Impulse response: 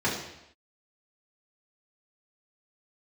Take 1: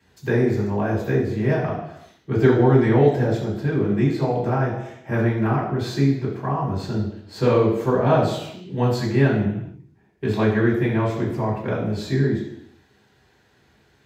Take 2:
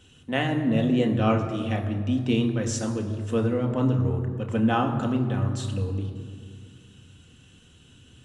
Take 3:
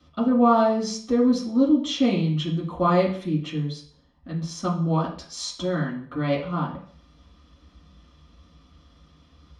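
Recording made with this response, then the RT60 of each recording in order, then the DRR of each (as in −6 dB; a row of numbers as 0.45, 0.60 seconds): 1; non-exponential decay, 2.0 s, 0.50 s; −7.5, 3.0, −6.0 decibels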